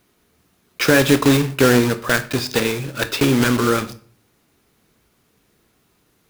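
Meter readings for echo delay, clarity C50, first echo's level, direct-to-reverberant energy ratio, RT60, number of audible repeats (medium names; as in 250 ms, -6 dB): no echo, 16.5 dB, no echo, 11.0 dB, 0.50 s, no echo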